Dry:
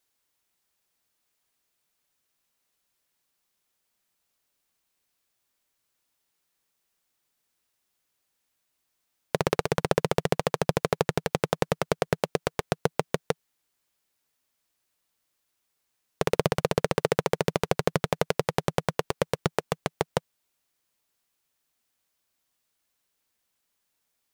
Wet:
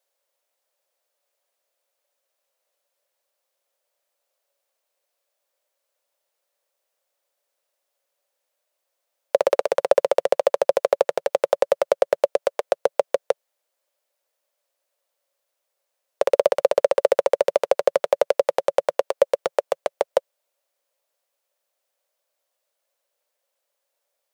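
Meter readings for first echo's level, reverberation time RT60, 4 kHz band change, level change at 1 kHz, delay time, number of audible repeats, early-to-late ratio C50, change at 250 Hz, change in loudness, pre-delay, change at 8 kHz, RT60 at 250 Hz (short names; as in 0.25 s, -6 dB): none, none, -2.0 dB, +3.5 dB, none, none, none, -11.0 dB, +6.5 dB, none, -2.0 dB, none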